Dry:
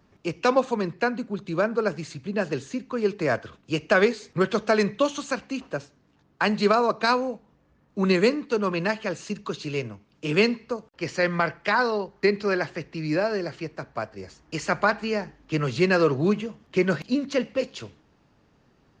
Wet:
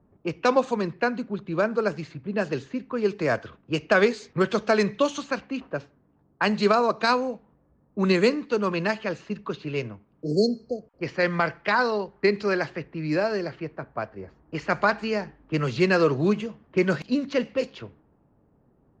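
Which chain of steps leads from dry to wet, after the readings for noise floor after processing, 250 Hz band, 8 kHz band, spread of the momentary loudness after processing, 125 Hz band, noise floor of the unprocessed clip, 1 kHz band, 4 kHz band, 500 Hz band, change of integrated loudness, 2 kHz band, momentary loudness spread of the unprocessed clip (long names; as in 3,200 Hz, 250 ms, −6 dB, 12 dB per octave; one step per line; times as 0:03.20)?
−64 dBFS, 0.0 dB, −3.0 dB, 13 LU, 0.0 dB, −63 dBFS, 0.0 dB, −1.0 dB, 0.0 dB, 0.0 dB, −0.5 dB, 13 LU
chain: low-pass that shuts in the quiet parts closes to 780 Hz, open at −20 dBFS
healed spectral selection 0:10.21–0:10.99, 760–4,100 Hz before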